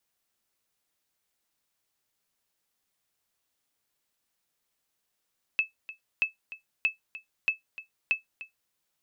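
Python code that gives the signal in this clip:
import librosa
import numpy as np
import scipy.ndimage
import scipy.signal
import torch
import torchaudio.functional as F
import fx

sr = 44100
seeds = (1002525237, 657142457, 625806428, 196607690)

y = fx.sonar_ping(sr, hz=2610.0, decay_s=0.14, every_s=0.63, pings=5, echo_s=0.3, echo_db=-16.0, level_db=-16.0)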